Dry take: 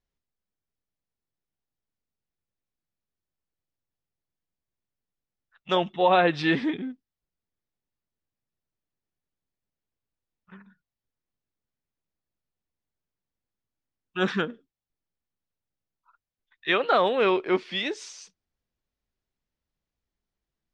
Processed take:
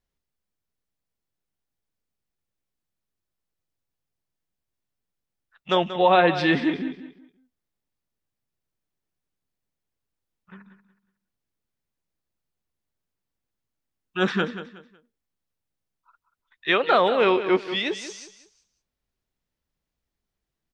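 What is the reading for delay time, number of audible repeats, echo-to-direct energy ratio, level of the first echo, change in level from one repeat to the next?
0.184 s, 3, -11.5 dB, -12.0 dB, -11.0 dB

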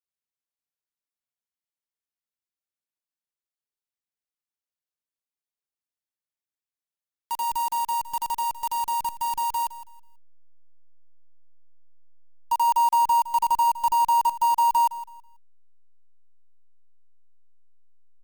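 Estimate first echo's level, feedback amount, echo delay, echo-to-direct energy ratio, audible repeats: -15.5 dB, 27%, 0.163 s, -15.0 dB, 2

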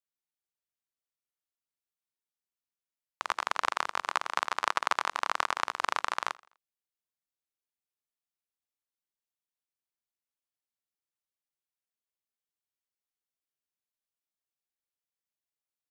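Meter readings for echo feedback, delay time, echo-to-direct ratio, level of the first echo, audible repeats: 42%, 83 ms, -23.0 dB, -24.0 dB, 2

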